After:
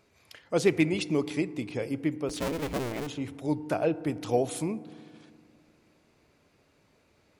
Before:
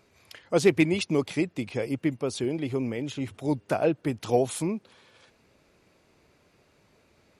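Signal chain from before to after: 2.29–3.07 cycle switcher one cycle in 2, inverted; FDN reverb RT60 2 s, low-frequency decay 1.35×, high-frequency decay 0.3×, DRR 15.5 dB; gain -3 dB

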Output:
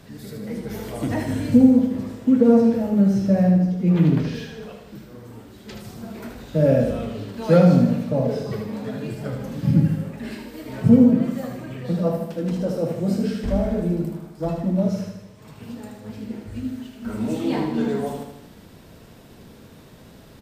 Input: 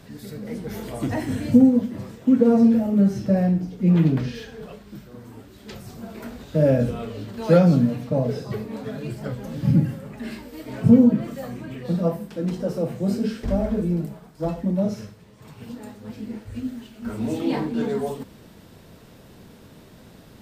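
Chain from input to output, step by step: feedback echo 77 ms, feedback 55%, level -6 dB

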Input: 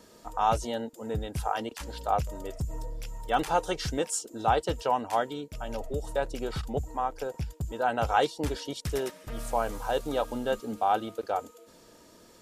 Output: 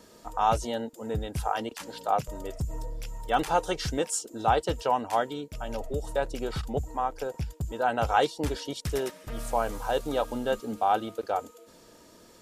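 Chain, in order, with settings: 1.78–2.28 HPF 130 Hz 24 dB/oct; gain +1 dB

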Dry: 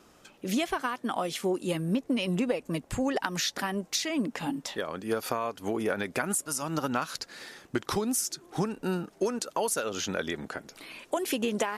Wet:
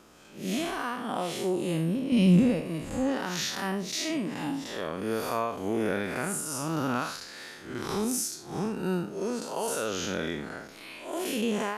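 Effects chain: time blur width 0.151 s; 2.12–2.61 tone controls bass +13 dB, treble +3 dB; gain +4 dB

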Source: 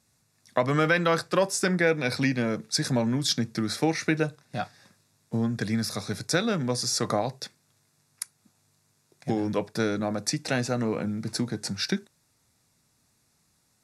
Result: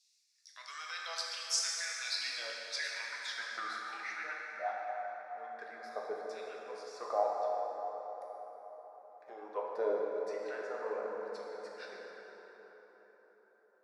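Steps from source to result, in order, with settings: reverb removal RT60 1.5 s; limiter -18 dBFS, peak gain reduction 9 dB; LFO high-pass saw down 0.8 Hz 510–3000 Hz; 3.78–5.37 dispersion highs, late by 0.108 s, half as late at 670 Hz; band-pass sweep 5200 Hz -> 460 Hz, 1.98–4.77; plate-style reverb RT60 4.9 s, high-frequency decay 0.5×, DRR -3.5 dB

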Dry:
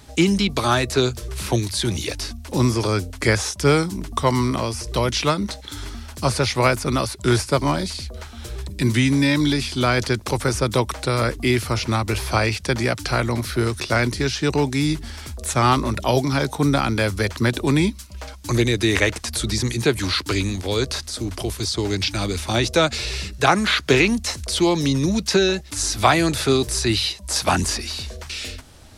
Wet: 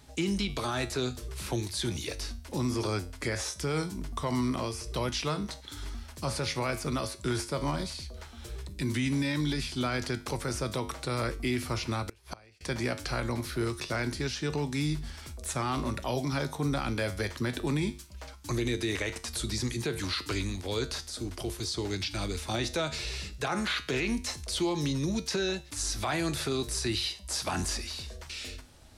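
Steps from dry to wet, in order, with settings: resonator 50 Hz, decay 0.38 s, harmonics odd, mix 60%; 12.04–12.61 flipped gate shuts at -21 dBFS, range -28 dB; limiter -17.5 dBFS, peak gain reduction 10.5 dB; gain -3.5 dB

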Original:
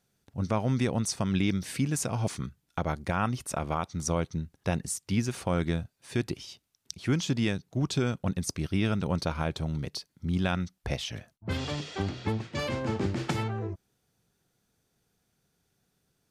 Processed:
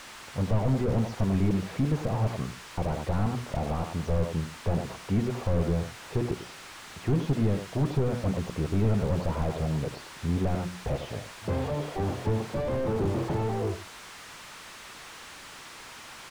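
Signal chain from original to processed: median filter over 5 samples; band shelf 680 Hz +9 dB; notches 60/120/180/240/300/360 Hz; echo 95 ms -14 dB; band noise 900–10000 Hz -41 dBFS; slew limiter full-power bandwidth 15 Hz; gain +3 dB

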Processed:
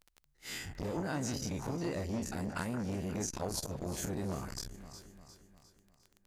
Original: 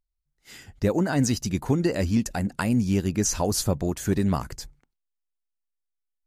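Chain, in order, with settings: spectral dilation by 60 ms; compressor 6:1, threshold -32 dBFS, peak gain reduction 16.5 dB; echo with dull and thin repeats by turns 0.177 s, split 1900 Hz, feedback 69%, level -11 dB; crackle 12/s -42 dBFS; core saturation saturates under 810 Hz

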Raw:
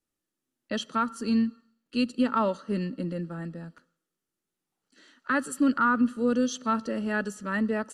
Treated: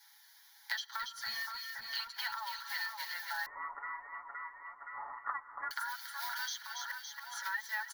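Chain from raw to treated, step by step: block floating point 5-bit; steep high-pass 830 Hz 72 dB/oct; comb 7.2 ms, depth 91%; compressor 12:1, threshold -39 dBFS, peak gain reduction 21.5 dB; 1.02–1.42 tube stage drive 38 dB, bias 0.3; 6.59–7.37 flipped gate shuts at -38 dBFS, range -31 dB; fixed phaser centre 1800 Hz, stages 8; split-band echo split 1800 Hz, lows 0.52 s, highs 0.281 s, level -7.5 dB; 3.46–5.71 inverted band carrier 2800 Hz; three-band squash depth 70%; gain +8 dB

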